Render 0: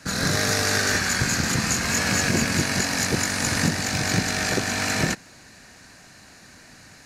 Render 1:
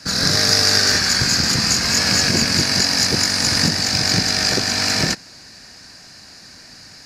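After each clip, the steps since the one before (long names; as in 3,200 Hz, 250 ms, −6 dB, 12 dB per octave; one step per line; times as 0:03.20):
parametric band 4,900 Hz +14 dB 0.42 octaves
level +2 dB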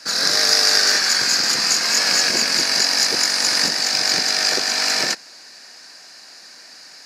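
high-pass filter 440 Hz 12 dB per octave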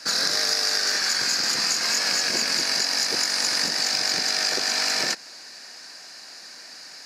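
downward compressor, threshold −20 dBFS, peak gain reduction 9 dB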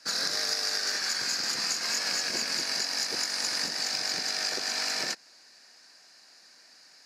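expander for the loud parts 1.5 to 1, over −37 dBFS
level −5.5 dB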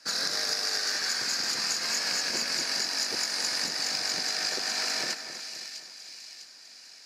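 echo with a time of its own for lows and highs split 2,300 Hz, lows 263 ms, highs 652 ms, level −9.5 dB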